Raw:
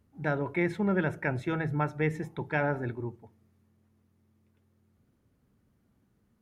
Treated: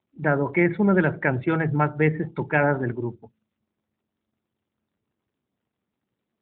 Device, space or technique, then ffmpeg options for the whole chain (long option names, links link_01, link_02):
mobile call with aggressive noise cancelling: -af "highpass=110,afftdn=noise_reduction=29:noise_floor=-48,volume=8.5dB" -ar 8000 -c:a libopencore_amrnb -b:a 12200